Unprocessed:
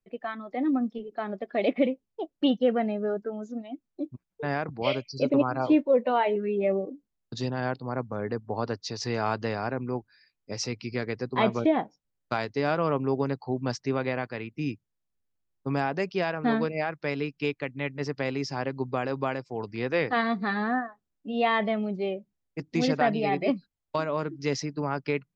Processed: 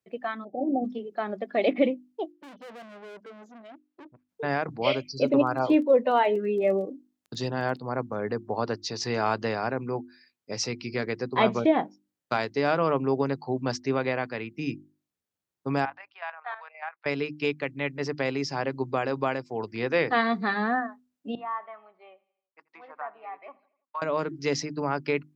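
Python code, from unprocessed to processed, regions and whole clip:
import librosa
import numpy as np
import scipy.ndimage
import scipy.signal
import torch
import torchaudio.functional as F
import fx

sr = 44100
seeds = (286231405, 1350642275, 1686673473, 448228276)

y = fx.spec_clip(x, sr, under_db=14, at=(0.43, 0.84), fade=0.02)
y = fx.cheby_ripple(y, sr, hz=790.0, ripple_db=3, at=(0.43, 0.84), fade=0.02)
y = fx.chain(y, sr, fx.tube_stage(drive_db=43.0, bias=0.45),
    fx.bass_treble(bass_db=-9, treble_db=-8), at=(2.32, 4.29))
y = fx.notch(y, sr, hz=2300.0, q=21.0, at=(5.25, 7.76), fade=0.02)
y = fx.dmg_crackle(y, sr, seeds[0], per_s=14.0, level_db=-40.0, at=(5.25, 7.76), fade=0.02)
y = fx.chain(y, sr, fx.steep_highpass(hz=790.0, slope=36),
    fx.level_steps(step_db=11),
    fx.air_absorb(metres=500.0), at=(15.85, 17.06))
y = fx.chain(y, sr, fx.env_lowpass_down(base_hz=1300.0, full_db=-20.5),
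    fx.ladder_bandpass(hz=1200.0, resonance_pct=60),
    fx.echo_feedback(ms=83, feedback_pct=54, wet_db=-22.5), at=(21.35, 24.02))
y = scipy.signal.sosfilt(scipy.signal.butter(2, 83.0, 'highpass', fs=sr, output='sos'), y)
y = fx.low_shelf(y, sr, hz=180.0, db=-4.0)
y = fx.hum_notches(y, sr, base_hz=50, count=7)
y = y * librosa.db_to_amplitude(2.5)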